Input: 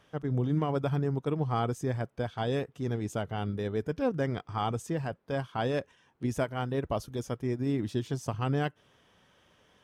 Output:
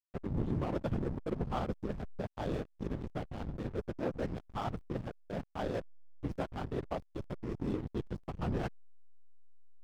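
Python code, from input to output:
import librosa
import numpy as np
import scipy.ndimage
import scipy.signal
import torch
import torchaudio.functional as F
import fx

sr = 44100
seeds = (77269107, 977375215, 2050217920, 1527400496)

y = fx.whisperise(x, sr, seeds[0])
y = fx.backlash(y, sr, play_db=-28.0)
y = y * librosa.db_to_amplitude(-4.5)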